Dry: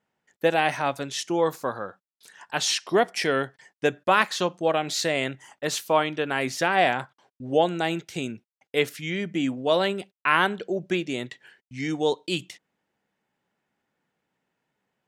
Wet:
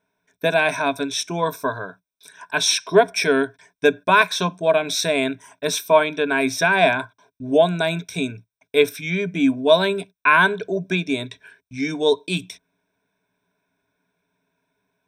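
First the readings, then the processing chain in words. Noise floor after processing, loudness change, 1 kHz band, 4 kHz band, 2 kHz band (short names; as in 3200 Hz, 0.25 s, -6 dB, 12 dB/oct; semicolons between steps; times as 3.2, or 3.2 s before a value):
-80 dBFS, +5.5 dB, +3.5 dB, +5.0 dB, +6.5 dB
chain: ripple EQ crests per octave 1.6, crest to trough 16 dB; gain +2 dB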